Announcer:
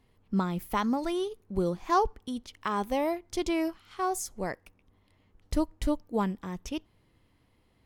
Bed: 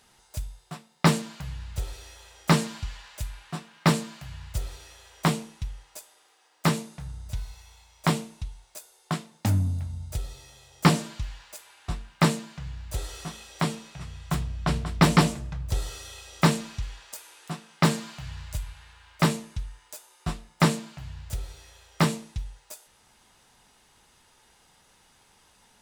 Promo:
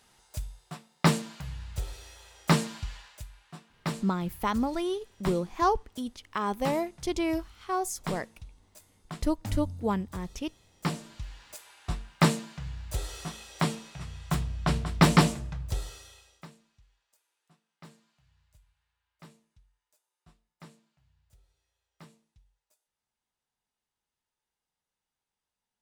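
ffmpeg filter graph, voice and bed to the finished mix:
-filter_complex "[0:a]adelay=3700,volume=0dB[a];[1:a]volume=8dB,afade=t=out:st=2.97:d=0.29:silence=0.354813,afade=t=in:st=11.01:d=0.65:silence=0.298538,afade=t=out:st=15.4:d=1.06:silence=0.0354813[b];[a][b]amix=inputs=2:normalize=0"

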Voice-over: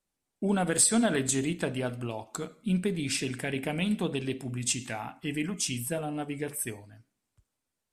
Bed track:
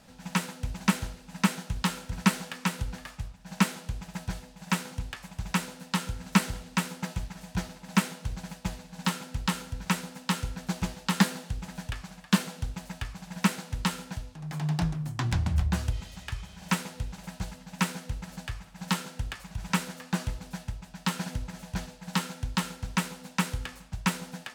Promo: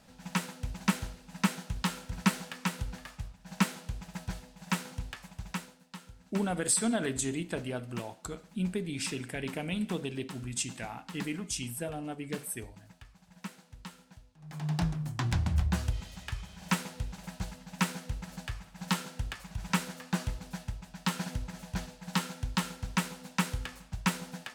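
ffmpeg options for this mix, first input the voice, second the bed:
-filter_complex "[0:a]adelay=5900,volume=-4.5dB[a];[1:a]volume=12dB,afade=t=out:st=5.15:d=0.69:silence=0.199526,afade=t=in:st=14.36:d=0.42:silence=0.16788[b];[a][b]amix=inputs=2:normalize=0"

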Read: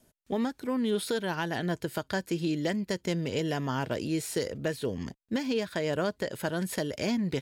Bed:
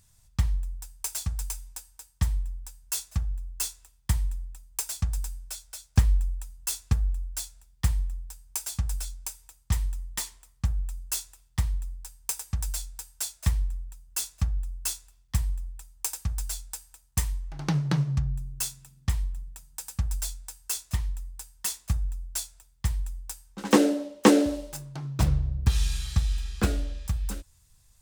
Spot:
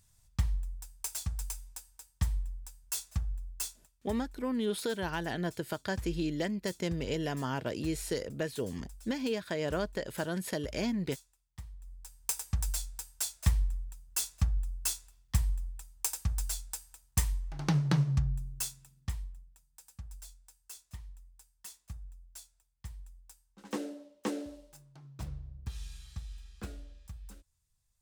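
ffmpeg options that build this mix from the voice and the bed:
-filter_complex "[0:a]adelay=3750,volume=-3.5dB[a];[1:a]volume=12.5dB,afade=t=out:st=3.51:d=0.63:silence=0.188365,afade=t=in:st=11.78:d=0.54:silence=0.133352,afade=t=out:st=18.17:d=1.33:silence=0.16788[b];[a][b]amix=inputs=2:normalize=0"

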